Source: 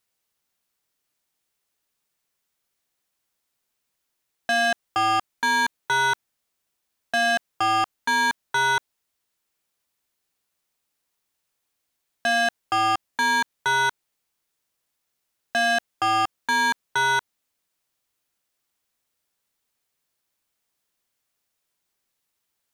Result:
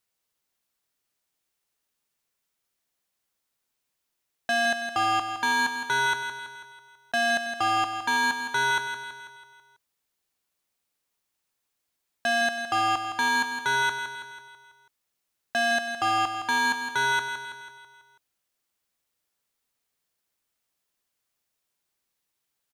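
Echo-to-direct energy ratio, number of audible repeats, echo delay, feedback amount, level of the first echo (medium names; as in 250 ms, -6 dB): -7.0 dB, 5, 164 ms, 53%, -8.5 dB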